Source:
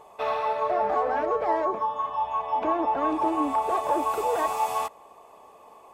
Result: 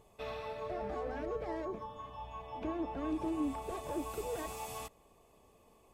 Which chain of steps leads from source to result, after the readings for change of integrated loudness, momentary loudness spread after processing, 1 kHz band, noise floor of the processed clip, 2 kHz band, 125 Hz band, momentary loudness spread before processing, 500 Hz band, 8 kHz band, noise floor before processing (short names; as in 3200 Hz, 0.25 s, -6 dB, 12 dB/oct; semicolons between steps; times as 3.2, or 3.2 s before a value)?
-13.5 dB, 10 LU, -19.0 dB, -65 dBFS, -12.5 dB, n/a, 4 LU, -12.5 dB, -6.5 dB, -52 dBFS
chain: passive tone stack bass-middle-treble 10-0-1; gain +14 dB